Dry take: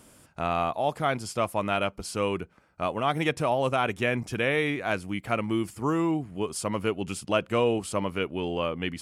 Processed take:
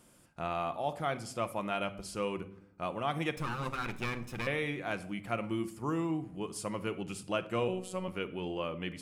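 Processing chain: 3.36–4.47 minimum comb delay 0.77 ms; 7.68–8.08 robotiser 185 Hz; reverb RT60 0.70 s, pre-delay 6 ms, DRR 9.5 dB; gain -8 dB

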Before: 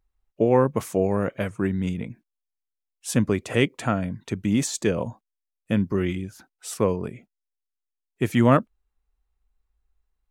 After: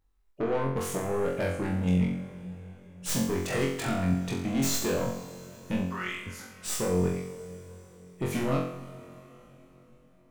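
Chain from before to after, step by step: tracing distortion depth 0.07 ms; compressor 6:1, threshold -21 dBFS, peak gain reduction 10.5 dB; 5.86–6.27 resonant high-pass 1200 Hz, resonance Q 1.6; soft clip -26 dBFS, distortion -8 dB; on a send: flutter echo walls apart 3.8 m, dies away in 0.6 s; on the sum: plate-style reverb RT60 4.6 s, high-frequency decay 0.9×, DRR 12.5 dB

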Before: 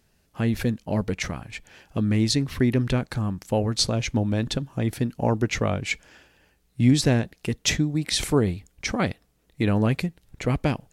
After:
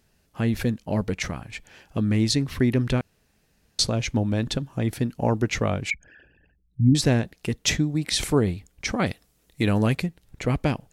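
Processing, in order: 3.01–3.79 room tone; 5.9–6.95 formant sharpening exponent 3; 9.06–9.95 bell 11000 Hz +8 dB 2.6 oct

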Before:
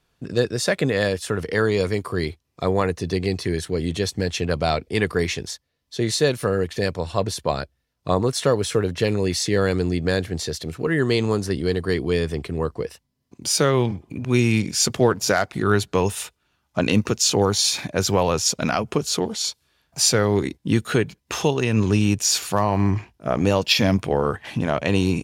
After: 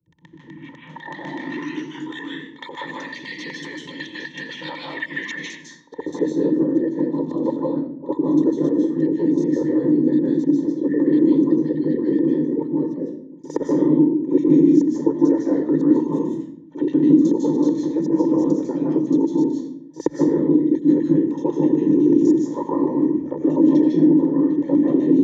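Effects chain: tape start at the beginning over 2.69 s; bell 450 Hz -13.5 dB 0.64 oct; notches 50/100/150/200/250 Hz; whisperiser; LFO band-pass square 8 Hz 380–5900 Hz; ripple EQ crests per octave 1.1, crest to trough 11 dB; band-pass sweep 2800 Hz -> 360 Hz, 5.4–6.29; small resonant body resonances 210/910/1800 Hz, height 13 dB, ringing for 20 ms; pre-echo 64 ms -17 dB; reverb RT60 0.55 s, pre-delay 0.145 s, DRR -2 dB; three-band squash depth 40%; gain +5.5 dB

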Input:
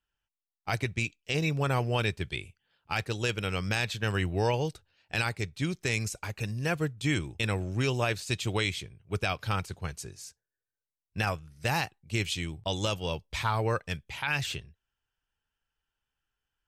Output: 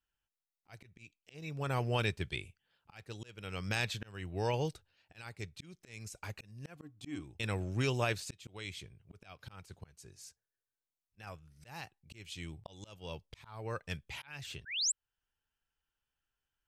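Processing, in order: 6.76–7.23 small resonant body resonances 290/740/1100 Hz, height 14 dB -> 16 dB, ringing for 0.1 s; 14.65–14.92 painted sound rise 1400–8300 Hz -18 dBFS; auto swell 0.58 s; gain -4 dB

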